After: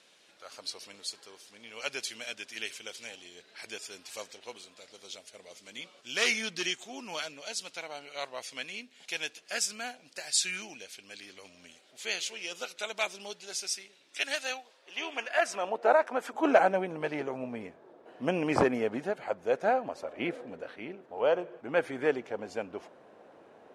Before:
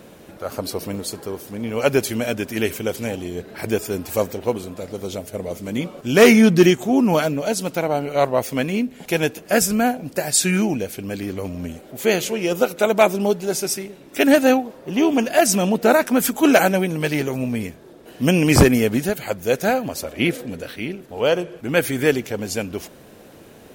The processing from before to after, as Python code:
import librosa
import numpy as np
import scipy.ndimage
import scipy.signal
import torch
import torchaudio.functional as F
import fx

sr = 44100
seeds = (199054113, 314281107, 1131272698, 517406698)

y = scipy.signal.sosfilt(scipy.signal.butter(4, 11000.0, 'lowpass', fs=sr, output='sos'), x)
y = fx.filter_sweep_bandpass(y, sr, from_hz=4100.0, to_hz=840.0, start_s=14.76, end_s=15.76, q=1.1)
y = fx.highpass(y, sr, hz=420.0, slope=12, at=(14.18, 16.34))
y = y * 10.0 ** (-4.5 / 20.0)